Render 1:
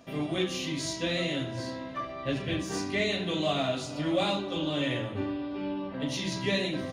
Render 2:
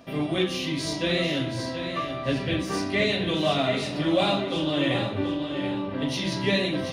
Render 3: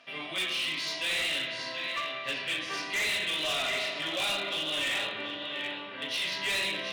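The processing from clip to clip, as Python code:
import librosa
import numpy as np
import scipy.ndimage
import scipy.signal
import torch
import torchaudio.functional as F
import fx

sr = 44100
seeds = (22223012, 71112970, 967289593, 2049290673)

y1 = fx.peak_eq(x, sr, hz=6800.0, db=-9.0, octaves=0.28)
y1 = fx.echo_feedback(y1, sr, ms=730, feedback_pct=27, wet_db=-8.5)
y1 = F.gain(torch.from_numpy(y1), 4.5).numpy()
y2 = fx.bandpass_q(y1, sr, hz=2600.0, q=1.4)
y2 = fx.rev_fdn(y2, sr, rt60_s=1.8, lf_ratio=1.25, hf_ratio=0.65, size_ms=14.0, drr_db=4.5)
y2 = np.clip(y2, -10.0 ** (-31.0 / 20.0), 10.0 ** (-31.0 / 20.0))
y2 = F.gain(torch.from_numpy(y2), 4.0).numpy()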